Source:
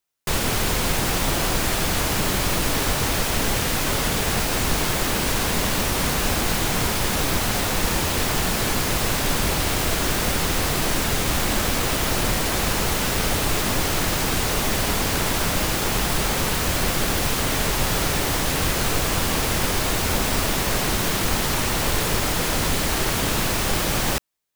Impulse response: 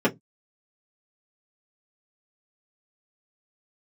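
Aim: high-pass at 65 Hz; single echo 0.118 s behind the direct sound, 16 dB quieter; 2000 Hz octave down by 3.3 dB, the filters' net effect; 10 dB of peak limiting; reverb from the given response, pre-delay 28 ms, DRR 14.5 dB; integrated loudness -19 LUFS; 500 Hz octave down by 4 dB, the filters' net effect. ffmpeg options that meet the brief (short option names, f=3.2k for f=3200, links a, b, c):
-filter_complex "[0:a]highpass=65,equalizer=f=500:t=o:g=-5,equalizer=f=2k:t=o:g=-4,alimiter=limit=-21dB:level=0:latency=1,aecho=1:1:118:0.158,asplit=2[a][b];[1:a]atrim=start_sample=2205,adelay=28[c];[b][c]afir=irnorm=-1:irlink=0,volume=-30dB[d];[a][d]amix=inputs=2:normalize=0,volume=9.5dB"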